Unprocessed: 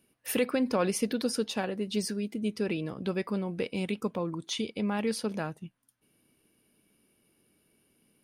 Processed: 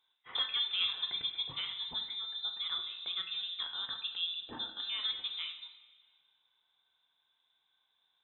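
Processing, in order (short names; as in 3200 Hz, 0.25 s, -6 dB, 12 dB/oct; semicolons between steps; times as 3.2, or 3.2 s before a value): inverted band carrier 3800 Hz; low shelf 160 Hz -9.5 dB; on a send: reverb, pre-delay 3 ms, DRR 3 dB; on the sum: gain -8 dB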